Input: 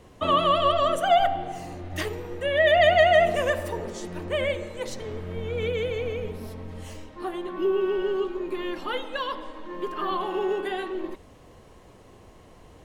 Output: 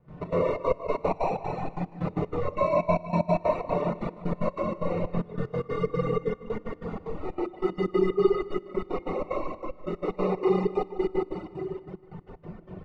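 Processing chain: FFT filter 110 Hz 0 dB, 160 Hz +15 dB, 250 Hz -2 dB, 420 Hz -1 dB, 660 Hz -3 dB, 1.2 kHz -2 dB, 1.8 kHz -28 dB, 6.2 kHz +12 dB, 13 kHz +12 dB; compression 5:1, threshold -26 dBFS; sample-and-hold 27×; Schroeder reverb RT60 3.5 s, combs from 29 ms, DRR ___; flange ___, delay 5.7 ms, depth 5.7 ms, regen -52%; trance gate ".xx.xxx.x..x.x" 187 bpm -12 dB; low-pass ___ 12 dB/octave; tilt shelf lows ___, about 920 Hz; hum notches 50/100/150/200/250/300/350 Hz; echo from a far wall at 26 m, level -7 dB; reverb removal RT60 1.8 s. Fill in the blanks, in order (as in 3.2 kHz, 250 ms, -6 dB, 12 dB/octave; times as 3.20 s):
-10 dB, 0.5 Hz, 1.8 kHz, +3.5 dB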